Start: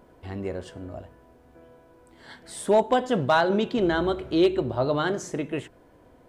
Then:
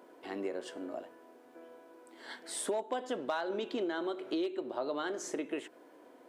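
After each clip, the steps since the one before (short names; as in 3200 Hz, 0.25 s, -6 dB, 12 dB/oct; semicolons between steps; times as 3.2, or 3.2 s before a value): Chebyshev high-pass 290 Hz, order 3; compressor 5:1, threshold -33 dBFS, peak gain reduction 15.5 dB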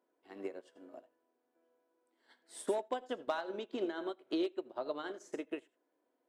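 on a send at -13 dB: reverb RT60 0.10 s, pre-delay 77 ms; on the sum: upward expander 2.5:1, over -47 dBFS; gain +2 dB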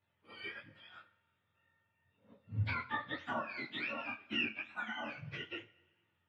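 spectrum mirrored in octaves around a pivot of 950 Hz; two-slope reverb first 0.37 s, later 1.7 s, from -18 dB, DRR 9.5 dB; detuned doubles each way 46 cents; gain +5.5 dB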